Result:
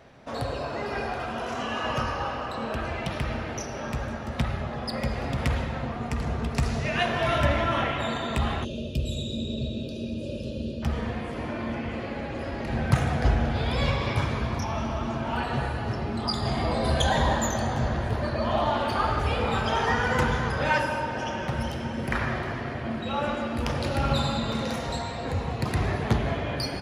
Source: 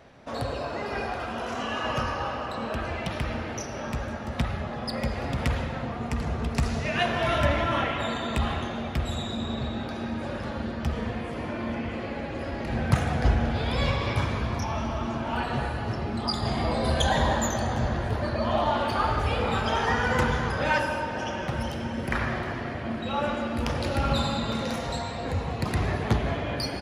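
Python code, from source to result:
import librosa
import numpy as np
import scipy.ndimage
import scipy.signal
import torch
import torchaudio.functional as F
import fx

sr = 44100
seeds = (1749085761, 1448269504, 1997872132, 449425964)

y = fx.rev_fdn(x, sr, rt60_s=1.6, lf_ratio=1.0, hf_ratio=0.45, size_ms=44.0, drr_db=13.5)
y = fx.spec_box(y, sr, start_s=8.64, length_s=2.19, low_hz=660.0, high_hz=2400.0, gain_db=-27)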